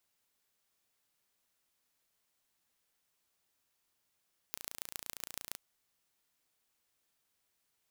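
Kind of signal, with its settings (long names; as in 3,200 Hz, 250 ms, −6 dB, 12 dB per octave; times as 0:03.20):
impulse train 28.7 per second, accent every 4, −10.5 dBFS 1.04 s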